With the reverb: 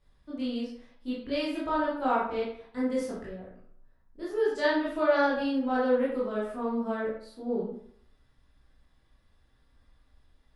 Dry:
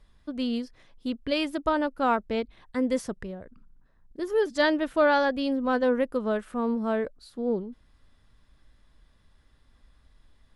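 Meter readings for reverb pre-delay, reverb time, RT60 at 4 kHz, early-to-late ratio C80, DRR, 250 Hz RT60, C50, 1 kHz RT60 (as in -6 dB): 15 ms, 0.65 s, 0.45 s, 6.5 dB, -8.5 dB, 0.60 s, 2.0 dB, 0.65 s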